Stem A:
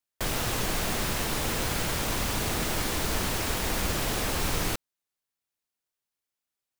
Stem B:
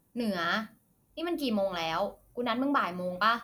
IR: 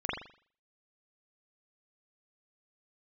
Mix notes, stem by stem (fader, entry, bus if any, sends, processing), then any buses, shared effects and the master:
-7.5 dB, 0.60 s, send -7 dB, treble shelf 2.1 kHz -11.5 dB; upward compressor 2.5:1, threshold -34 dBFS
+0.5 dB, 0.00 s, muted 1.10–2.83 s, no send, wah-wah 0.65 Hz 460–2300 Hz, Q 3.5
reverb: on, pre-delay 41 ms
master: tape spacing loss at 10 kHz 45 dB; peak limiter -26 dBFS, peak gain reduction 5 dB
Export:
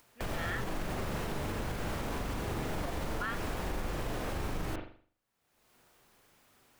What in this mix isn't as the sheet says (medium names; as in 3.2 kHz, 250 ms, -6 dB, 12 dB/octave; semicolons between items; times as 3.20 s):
stem A: entry 0.60 s -> 0.00 s; master: missing tape spacing loss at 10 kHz 45 dB